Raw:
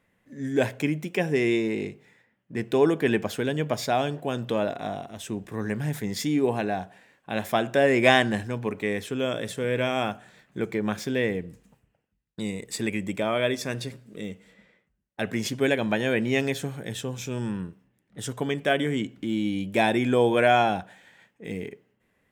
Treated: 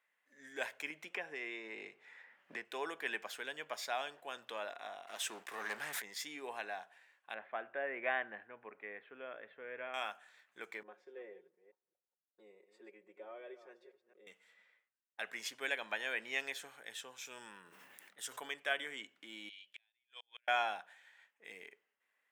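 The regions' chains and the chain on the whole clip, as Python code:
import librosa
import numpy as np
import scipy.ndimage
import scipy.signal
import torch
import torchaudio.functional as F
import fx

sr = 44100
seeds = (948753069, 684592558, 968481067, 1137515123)

y = fx.chain(x, sr, fx.lowpass(hz=2100.0, slope=6),
    fx.band_squash(depth_pct=100), at=(0.9, 2.65))
y = fx.chain(y, sr, fx.low_shelf(hz=130.0, db=-11.5),
    fx.leveller(passes=3), at=(5.07, 6.02))
y = fx.chain(y, sr, fx.gaussian_blur(sigma=4.4),
    fx.peak_eq(hz=980.0, db=-5.0, octaves=0.64), at=(7.34, 9.94))
y = fx.chain(y, sr, fx.reverse_delay(ms=220, wet_db=-12.0),
    fx.bandpass_q(hz=420.0, q=3.3),
    fx.comb(ms=5.5, depth=0.89), at=(10.83, 14.27))
y = fx.chain(y, sr, fx.high_shelf(hz=9600.0, db=9.5),
    fx.sustainer(db_per_s=33.0), at=(17.25, 18.54))
y = fx.chain(y, sr, fx.bandpass_q(hz=3300.0, q=2.3),
    fx.gate_flip(shuts_db=-28.0, range_db=-39), at=(19.49, 20.48))
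y = scipy.signal.sosfilt(scipy.signal.butter(2, 1300.0, 'highpass', fs=sr, output='sos'), y)
y = fx.high_shelf(y, sr, hz=2100.0, db=-8.5)
y = F.gain(torch.from_numpy(y), -3.0).numpy()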